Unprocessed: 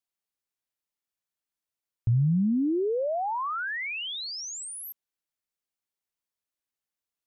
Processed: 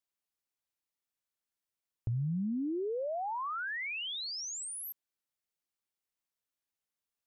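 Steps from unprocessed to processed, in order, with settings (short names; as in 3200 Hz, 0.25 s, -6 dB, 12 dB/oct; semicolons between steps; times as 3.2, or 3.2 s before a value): compressor 2:1, threshold -36 dBFS, peak gain reduction 8.5 dB; gain -2 dB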